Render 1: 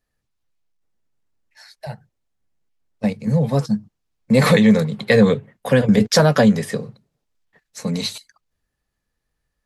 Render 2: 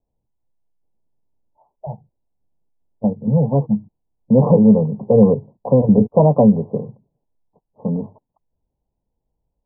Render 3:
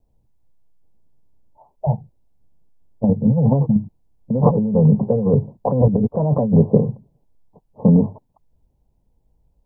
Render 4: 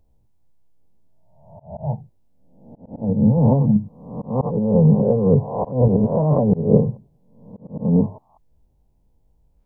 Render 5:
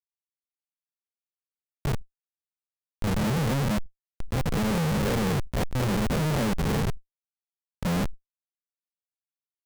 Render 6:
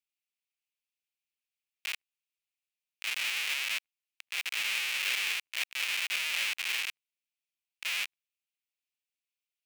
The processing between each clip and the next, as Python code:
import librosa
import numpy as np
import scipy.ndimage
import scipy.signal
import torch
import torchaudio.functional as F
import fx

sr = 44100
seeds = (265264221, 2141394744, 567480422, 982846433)

y1 = scipy.signal.sosfilt(scipy.signal.butter(16, 1000.0, 'lowpass', fs=sr, output='sos'), x)
y1 = y1 * librosa.db_to_amplitude(2.0)
y2 = fx.low_shelf(y1, sr, hz=190.0, db=8.0)
y2 = fx.over_compress(y2, sr, threshold_db=-16.0, ratio=-1.0)
y2 = y2 * librosa.db_to_amplitude(1.0)
y3 = fx.spec_swells(y2, sr, rise_s=0.72)
y3 = fx.auto_swell(y3, sr, attack_ms=232.0)
y3 = y3 * librosa.db_to_amplitude(-1.0)
y4 = fx.schmitt(y3, sr, flips_db=-20.0)
y4 = fx.leveller(y4, sr, passes=3)
y4 = fx.sustainer(y4, sr, db_per_s=33.0)
y4 = y4 * librosa.db_to_amplitude(-8.5)
y5 = fx.highpass_res(y4, sr, hz=2500.0, q=3.8)